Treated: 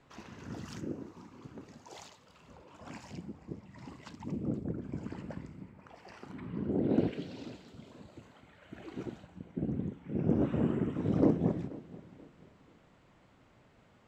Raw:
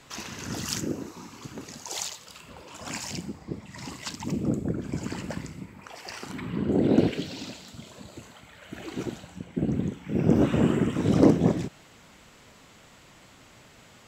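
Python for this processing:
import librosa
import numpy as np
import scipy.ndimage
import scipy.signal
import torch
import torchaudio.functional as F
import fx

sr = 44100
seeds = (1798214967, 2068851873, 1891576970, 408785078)

y = fx.lowpass(x, sr, hz=fx.steps((0.0, 1100.0), (6.9, 1800.0), (9.26, 1100.0)), slope=6)
y = fx.echo_feedback(y, sr, ms=483, feedback_pct=33, wet_db=-19.5)
y = y * librosa.db_to_amplitude(-7.5)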